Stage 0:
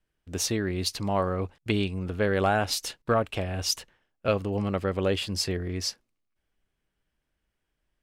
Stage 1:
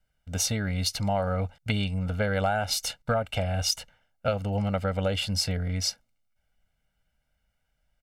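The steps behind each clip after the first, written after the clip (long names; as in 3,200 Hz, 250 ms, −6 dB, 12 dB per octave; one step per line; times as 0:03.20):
comb filter 1.4 ms, depth 96%
downward compressor, threshold −22 dBFS, peak gain reduction 7.5 dB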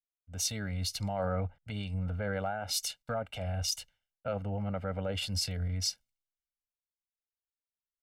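brickwall limiter −22.5 dBFS, peak gain reduction 9 dB
multiband upward and downward expander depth 100%
level −3.5 dB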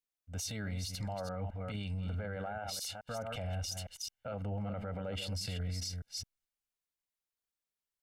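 delay that plays each chunk backwards 215 ms, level −9 dB
brickwall limiter −31.5 dBFS, peak gain reduction 11 dB
level +1 dB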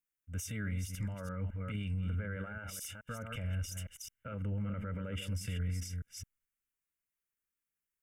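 phaser with its sweep stopped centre 1,800 Hz, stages 4
level +2.5 dB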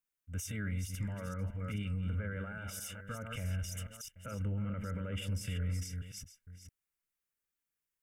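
delay that plays each chunk backwards 446 ms, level −12 dB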